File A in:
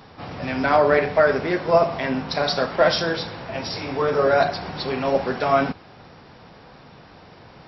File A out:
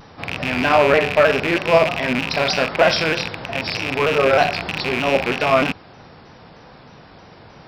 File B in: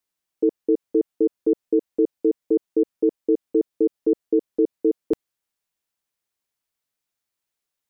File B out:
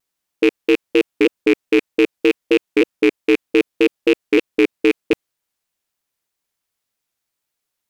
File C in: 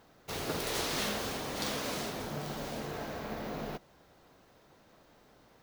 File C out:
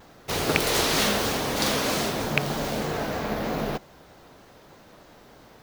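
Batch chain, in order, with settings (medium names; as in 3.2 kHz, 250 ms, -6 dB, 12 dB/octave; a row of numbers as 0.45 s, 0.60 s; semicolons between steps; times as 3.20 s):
rattle on loud lows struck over -34 dBFS, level -13 dBFS; vibrato with a chosen wave saw down 3.2 Hz, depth 100 cents; peak normalisation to -1.5 dBFS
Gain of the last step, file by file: +2.5 dB, +5.0 dB, +10.5 dB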